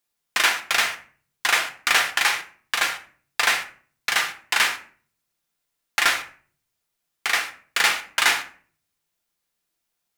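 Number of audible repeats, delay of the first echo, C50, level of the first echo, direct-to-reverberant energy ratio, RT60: no echo, no echo, 12.5 dB, no echo, 5.0 dB, 0.45 s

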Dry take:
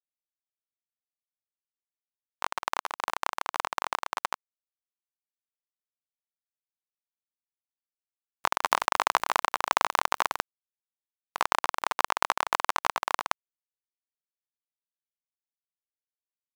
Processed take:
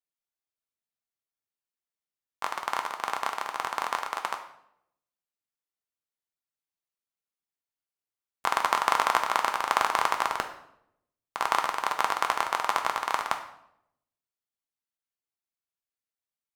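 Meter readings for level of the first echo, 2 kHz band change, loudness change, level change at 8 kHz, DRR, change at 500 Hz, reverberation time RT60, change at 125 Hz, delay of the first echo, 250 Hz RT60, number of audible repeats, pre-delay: no echo, +0.5 dB, +0.5 dB, -1.0 dB, 4.0 dB, +1.0 dB, 0.75 s, no reading, no echo, 0.90 s, no echo, 3 ms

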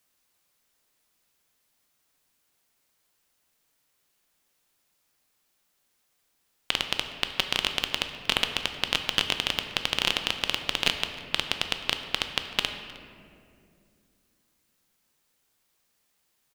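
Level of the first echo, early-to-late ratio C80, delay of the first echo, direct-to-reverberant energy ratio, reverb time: -22.0 dB, 8.5 dB, 310 ms, 6.0 dB, 2.3 s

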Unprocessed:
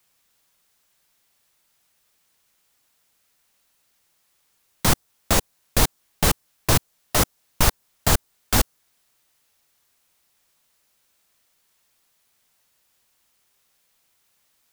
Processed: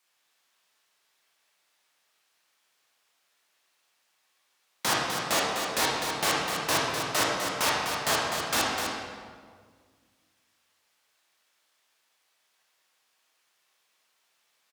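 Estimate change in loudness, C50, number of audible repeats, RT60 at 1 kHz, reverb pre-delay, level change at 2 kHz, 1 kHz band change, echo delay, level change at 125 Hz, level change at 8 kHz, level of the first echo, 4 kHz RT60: -4.5 dB, -1.5 dB, 1, 1.6 s, 18 ms, +1.0 dB, +0.5 dB, 252 ms, -16.0 dB, -5.5 dB, -6.5 dB, 1.2 s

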